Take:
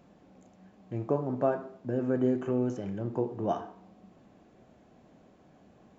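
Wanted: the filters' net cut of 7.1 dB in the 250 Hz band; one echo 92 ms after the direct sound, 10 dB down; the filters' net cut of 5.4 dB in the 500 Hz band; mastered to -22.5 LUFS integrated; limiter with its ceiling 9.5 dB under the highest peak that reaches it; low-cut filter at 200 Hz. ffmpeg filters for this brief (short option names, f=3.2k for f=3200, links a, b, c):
-af "highpass=200,equalizer=f=250:t=o:g=-5,equalizer=f=500:t=o:g=-5.5,alimiter=level_in=4dB:limit=-24dB:level=0:latency=1,volume=-4dB,aecho=1:1:92:0.316,volume=17.5dB"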